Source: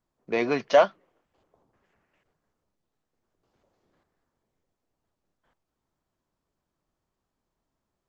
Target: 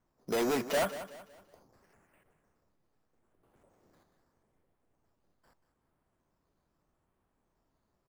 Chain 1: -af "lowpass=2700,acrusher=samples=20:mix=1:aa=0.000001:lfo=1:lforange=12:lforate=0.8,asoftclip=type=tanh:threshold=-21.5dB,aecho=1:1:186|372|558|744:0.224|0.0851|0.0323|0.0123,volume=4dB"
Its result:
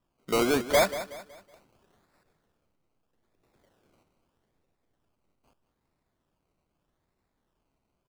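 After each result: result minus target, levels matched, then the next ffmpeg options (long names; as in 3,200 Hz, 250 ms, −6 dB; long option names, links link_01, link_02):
sample-and-hold swept by an LFO: distortion +12 dB; soft clipping: distortion −4 dB
-af "lowpass=2700,acrusher=samples=6:mix=1:aa=0.000001:lfo=1:lforange=3.6:lforate=0.8,asoftclip=type=tanh:threshold=-21.5dB,aecho=1:1:186|372|558|744:0.224|0.0851|0.0323|0.0123,volume=4dB"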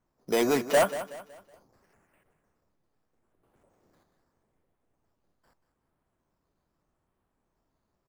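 soft clipping: distortion −4 dB
-af "lowpass=2700,acrusher=samples=6:mix=1:aa=0.000001:lfo=1:lforange=3.6:lforate=0.8,asoftclip=type=tanh:threshold=-30.5dB,aecho=1:1:186|372|558|744:0.224|0.0851|0.0323|0.0123,volume=4dB"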